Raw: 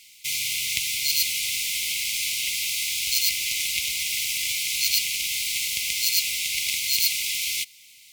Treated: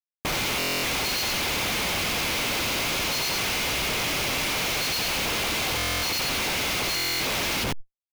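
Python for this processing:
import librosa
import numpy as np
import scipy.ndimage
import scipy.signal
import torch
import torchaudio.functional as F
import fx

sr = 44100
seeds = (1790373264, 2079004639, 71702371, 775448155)

y = scipy.signal.sosfilt(scipy.signal.butter(12, 6900.0, 'lowpass', fs=sr, output='sos'), x)
y = fx.echo_feedback(y, sr, ms=91, feedback_pct=35, wet_db=-4)
y = fx.schmitt(y, sr, flips_db=-28.5)
y = fx.buffer_glitch(y, sr, at_s=(0.58, 5.77, 6.95), block=1024, repeats=10)
y = fx.env_flatten(y, sr, amount_pct=100)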